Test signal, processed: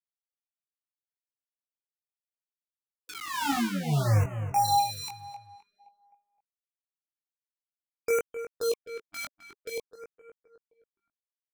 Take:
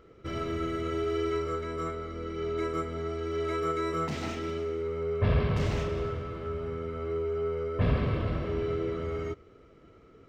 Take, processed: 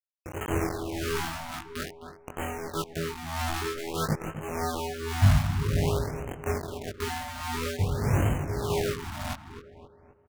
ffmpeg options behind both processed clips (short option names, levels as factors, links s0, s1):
-filter_complex "[0:a]afftfilt=real='re*gte(hypot(re,im),0.00398)':imag='im*gte(hypot(re,im),0.00398)':win_size=1024:overlap=0.75,highpass=83,aemphasis=mode=reproduction:type=bsi,afftfilt=real='re*gte(hypot(re,im),0.141)':imag='im*gte(hypot(re,im),0.141)':win_size=1024:overlap=0.75,adynamicequalizer=threshold=0.00631:dfrequency=260:dqfactor=5.2:tfrequency=260:tqfactor=5.2:attack=5:release=100:ratio=0.375:range=2:mode=cutabove:tftype=bell,asplit=2[s0][s1];[s1]acompressor=threshold=0.0251:ratio=8,volume=0.794[s2];[s0][s2]amix=inputs=2:normalize=0,acrusher=bits=3:mix=0:aa=0.000001,tremolo=f=1.7:d=0.65,flanger=delay=19:depth=2.6:speed=0.69,aeval=exprs='0.316*(cos(1*acos(clip(val(0)/0.316,-1,1)))-cos(1*PI/2))+0.00224*(cos(7*acos(clip(val(0)/0.316,-1,1)))-cos(7*PI/2))':c=same,asplit=2[s3][s4];[s4]adelay=260,lowpass=f=2600:p=1,volume=0.299,asplit=2[s5][s6];[s6]adelay=260,lowpass=f=2600:p=1,volume=0.47,asplit=2[s7][s8];[s8]adelay=260,lowpass=f=2600:p=1,volume=0.47,asplit=2[s9][s10];[s10]adelay=260,lowpass=f=2600:p=1,volume=0.47,asplit=2[s11][s12];[s12]adelay=260,lowpass=f=2600:p=1,volume=0.47[s13];[s3][s5][s7][s9][s11][s13]amix=inputs=6:normalize=0,afftfilt=real='re*(1-between(b*sr/1024,400*pow(4500/400,0.5+0.5*sin(2*PI*0.51*pts/sr))/1.41,400*pow(4500/400,0.5+0.5*sin(2*PI*0.51*pts/sr))*1.41))':imag='im*(1-between(b*sr/1024,400*pow(4500/400,0.5+0.5*sin(2*PI*0.51*pts/sr))/1.41,400*pow(4500/400,0.5+0.5*sin(2*PI*0.51*pts/sr))*1.41))':win_size=1024:overlap=0.75"